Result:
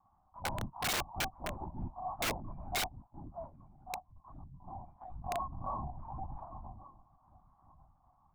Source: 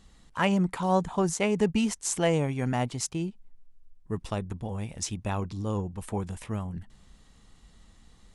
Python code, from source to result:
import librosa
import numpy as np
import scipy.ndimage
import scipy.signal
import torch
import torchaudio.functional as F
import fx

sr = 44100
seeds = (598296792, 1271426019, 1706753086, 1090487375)

y = fx.hpss_only(x, sr, part='harmonic')
y = fx.formant_cascade(y, sr, vowel='a')
y = fx.doubler(y, sr, ms=22.0, db=-2.5)
y = y + 10.0 ** (-15.5 / 20.0) * np.pad(y, (int(1138 * sr / 1000.0), 0))[:len(y)]
y = fx.quant_float(y, sr, bits=6)
y = fx.lpc_vocoder(y, sr, seeds[0], excitation='whisper', order=10)
y = fx.env_lowpass_down(y, sr, base_hz=730.0, full_db=-36.0)
y = fx.fixed_phaser(y, sr, hz=1100.0, stages=4)
y = (np.mod(10.0 ** (38.5 / 20.0) * y + 1.0, 2.0) - 1.0) / 10.0 ** (38.5 / 20.0)
y = fx.env_flatten(y, sr, amount_pct=50, at=(5.01, 6.45))
y = y * librosa.db_to_amplitude(10.5)